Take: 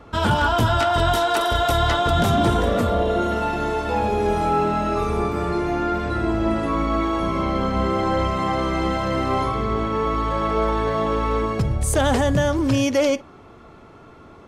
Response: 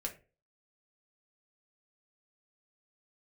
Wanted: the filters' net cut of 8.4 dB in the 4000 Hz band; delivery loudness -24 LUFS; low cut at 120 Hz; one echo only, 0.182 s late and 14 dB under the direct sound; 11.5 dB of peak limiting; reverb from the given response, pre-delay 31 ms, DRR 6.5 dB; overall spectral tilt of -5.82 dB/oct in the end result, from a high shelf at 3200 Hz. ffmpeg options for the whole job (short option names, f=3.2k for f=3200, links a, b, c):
-filter_complex "[0:a]highpass=120,highshelf=f=3.2k:g=-8.5,equalizer=f=4k:t=o:g=-5,alimiter=limit=-20dB:level=0:latency=1,aecho=1:1:182:0.2,asplit=2[a][b];[1:a]atrim=start_sample=2205,adelay=31[c];[b][c]afir=irnorm=-1:irlink=0,volume=-6.5dB[d];[a][d]amix=inputs=2:normalize=0,volume=3dB"